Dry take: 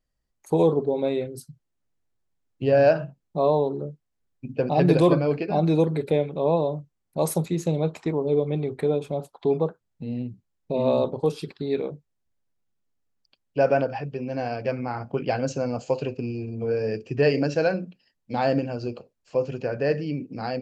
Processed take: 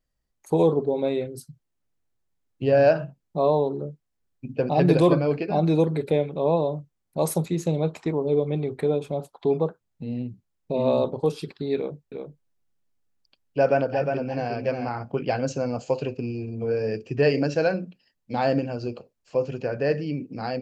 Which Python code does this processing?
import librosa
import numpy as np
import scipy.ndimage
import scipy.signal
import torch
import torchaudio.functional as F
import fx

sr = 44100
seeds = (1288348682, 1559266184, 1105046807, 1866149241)

y = fx.echo_single(x, sr, ms=357, db=-5.5, at=(11.76, 14.89))